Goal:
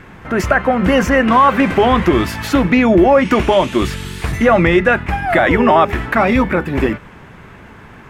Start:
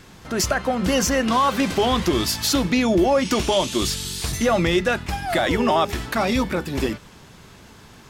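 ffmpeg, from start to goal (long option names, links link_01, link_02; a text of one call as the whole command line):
ffmpeg -i in.wav -af "highshelf=frequency=3100:width_type=q:width=1.5:gain=-13.5,volume=7.5dB" out.wav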